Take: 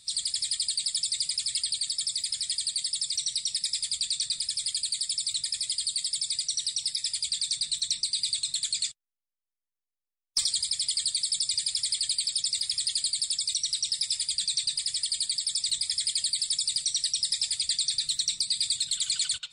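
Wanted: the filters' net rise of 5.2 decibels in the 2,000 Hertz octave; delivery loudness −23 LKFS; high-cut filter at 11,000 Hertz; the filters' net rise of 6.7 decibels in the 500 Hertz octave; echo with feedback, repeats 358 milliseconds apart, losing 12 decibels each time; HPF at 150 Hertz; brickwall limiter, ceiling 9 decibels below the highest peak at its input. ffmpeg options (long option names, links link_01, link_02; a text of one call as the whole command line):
ffmpeg -i in.wav -af "highpass=150,lowpass=11000,equalizer=frequency=500:width_type=o:gain=8,equalizer=frequency=2000:width_type=o:gain=6,alimiter=limit=-22.5dB:level=0:latency=1,aecho=1:1:358|716|1074:0.251|0.0628|0.0157,volume=7.5dB" out.wav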